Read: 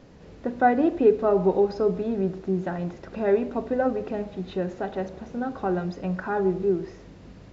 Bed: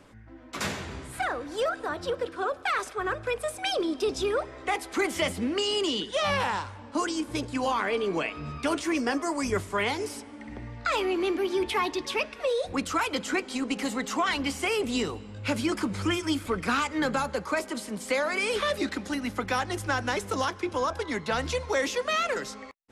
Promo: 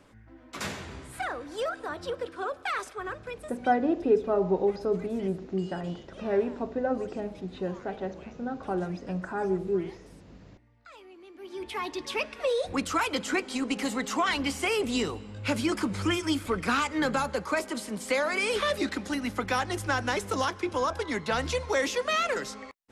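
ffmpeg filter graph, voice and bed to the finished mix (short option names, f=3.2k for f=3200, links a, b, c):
-filter_complex "[0:a]adelay=3050,volume=-4.5dB[a];[1:a]volume=20dB,afade=t=out:st=2.79:d=0.95:silence=0.1,afade=t=in:st=11.33:d=1.09:silence=0.0668344[b];[a][b]amix=inputs=2:normalize=0"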